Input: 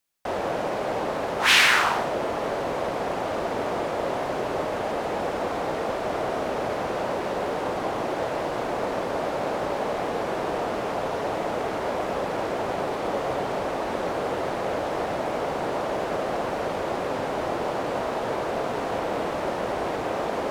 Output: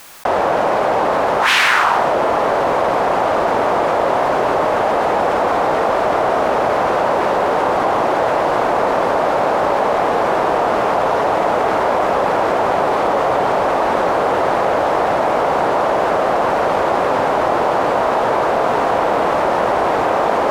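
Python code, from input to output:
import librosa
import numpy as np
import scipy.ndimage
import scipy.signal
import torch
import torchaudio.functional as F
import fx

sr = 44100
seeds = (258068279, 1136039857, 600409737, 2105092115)

y = fx.peak_eq(x, sr, hz=1000.0, db=8.5, octaves=2.0)
y = fx.env_flatten(y, sr, amount_pct=70)
y = y * 10.0 ** (-1.0 / 20.0)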